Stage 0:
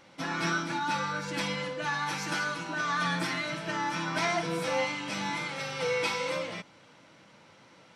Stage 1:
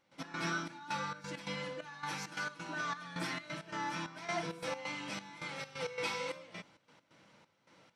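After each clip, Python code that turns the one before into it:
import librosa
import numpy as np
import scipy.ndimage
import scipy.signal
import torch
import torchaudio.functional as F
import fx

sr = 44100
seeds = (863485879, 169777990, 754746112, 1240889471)

y = fx.step_gate(x, sr, bpm=133, pattern='.x.xxx..xx', floor_db=-12.0, edge_ms=4.5)
y = F.gain(torch.from_numpy(y), -6.5).numpy()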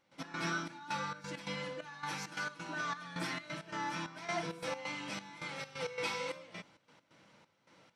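y = x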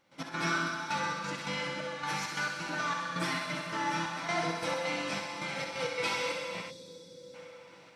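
y = fx.echo_thinned(x, sr, ms=65, feedback_pct=75, hz=500.0, wet_db=-6.0)
y = fx.rev_plate(y, sr, seeds[0], rt60_s=4.9, hf_ratio=0.8, predelay_ms=0, drr_db=5.5)
y = fx.spec_box(y, sr, start_s=6.7, length_s=0.64, low_hz=590.0, high_hz=3300.0, gain_db=-18)
y = F.gain(torch.from_numpy(y), 4.0).numpy()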